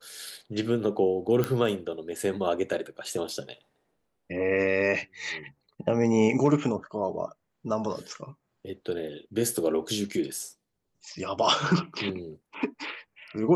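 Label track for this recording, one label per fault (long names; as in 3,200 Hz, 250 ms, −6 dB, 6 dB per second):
1.440000	1.440000	click −13 dBFS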